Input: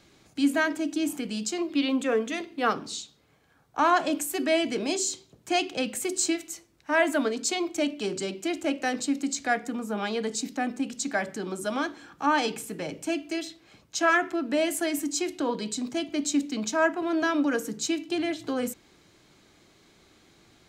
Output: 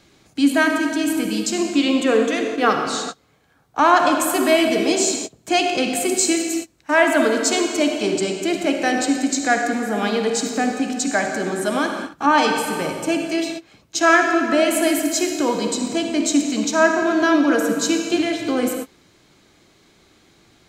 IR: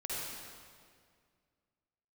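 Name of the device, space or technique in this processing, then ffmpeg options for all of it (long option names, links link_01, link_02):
keyed gated reverb: -filter_complex "[0:a]asplit=3[link_01][link_02][link_03];[1:a]atrim=start_sample=2205[link_04];[link_02][link_04]afir=irnorm=-1:irlink=0[link_05];[link_03]apad=whole_len=912102[link_06];[link_05][link_06]sidechaingate=range=-33dB:threshold=-46dB:ratio=16:detection=peak,volume=-2.5dB[link_07];[link_01][link_07]amix=inputs=2:normalize=0,volume=4dB"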